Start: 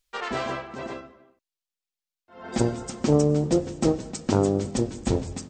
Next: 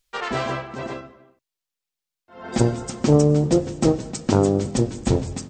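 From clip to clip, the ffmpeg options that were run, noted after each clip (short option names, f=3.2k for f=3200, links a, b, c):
-af "equalizer=f=130:w=5.5:g=6.5,volume=3.5dB"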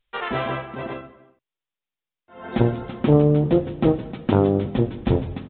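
-af "aresample=8000,aresample=44100"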